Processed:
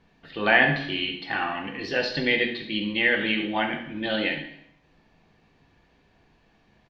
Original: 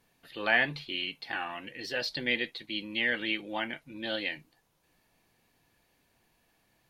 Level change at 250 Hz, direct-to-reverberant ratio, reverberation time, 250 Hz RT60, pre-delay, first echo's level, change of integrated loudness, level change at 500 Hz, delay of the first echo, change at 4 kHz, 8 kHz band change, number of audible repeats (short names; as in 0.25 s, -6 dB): +10.0 dB, 3.5 dB, 0.75 s, 0.75 s, 3 ms, -11.0 dB, +7.0 dB, +9.0 dB, 68 ms, +5.0 dB, n/a, 1